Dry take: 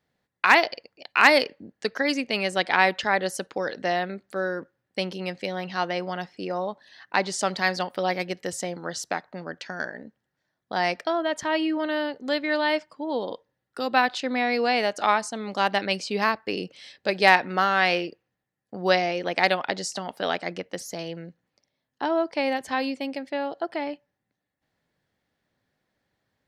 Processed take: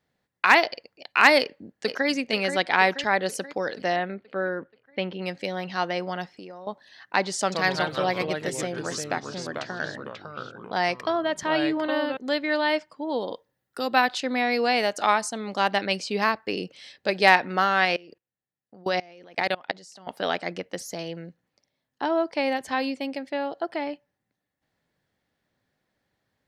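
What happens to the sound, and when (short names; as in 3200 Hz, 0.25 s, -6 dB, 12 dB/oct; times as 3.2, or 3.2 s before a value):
1.39–2.08 echo throw 0.48 s, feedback 55%, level -7.5 dB
3.96–5.22 LPF 3300 Hz 24 dB/oct
6.26–6.67 compressor, threshold -38 dBFS
7.4–12.17 echoes that change speed 0.119 s, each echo -3 st, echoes 3, each echo -6 dB
13.09–15.41 high shelf 9400 Hz +10 dB
17.85–20.07 level quantiser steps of 24 dB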